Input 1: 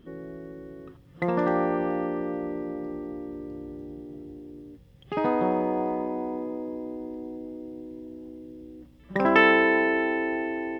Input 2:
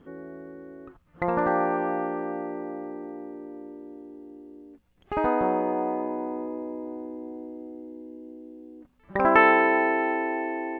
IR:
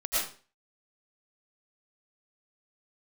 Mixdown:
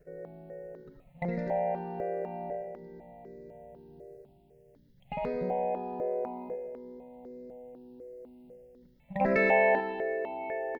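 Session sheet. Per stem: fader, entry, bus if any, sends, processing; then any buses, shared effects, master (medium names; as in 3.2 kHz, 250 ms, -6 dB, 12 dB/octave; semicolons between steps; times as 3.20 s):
-8.5 dB, 0.00 s, send -11 dB, none
+1.5 dB, 1.5 ms, polarity flipped, send -12 dB, level held to a coarse grid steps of 11 dB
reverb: on, RT60 0.40 s, pre-delay 70 ms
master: static phaser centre 310 Hz, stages 6; stepped phaser 4 Hz 880–3000 Hz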